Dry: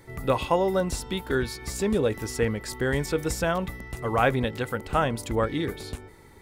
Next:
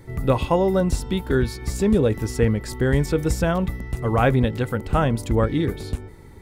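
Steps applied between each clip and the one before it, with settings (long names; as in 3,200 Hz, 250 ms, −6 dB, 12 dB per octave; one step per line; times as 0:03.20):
low-shelf EQ 350 Hz +10.5 dB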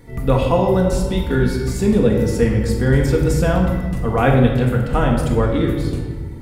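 rectangular room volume 1,100 cubic metres, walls mixed, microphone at 1.8 metres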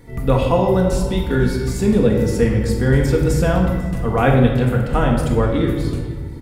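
single-tap delay 494 ms −22 dB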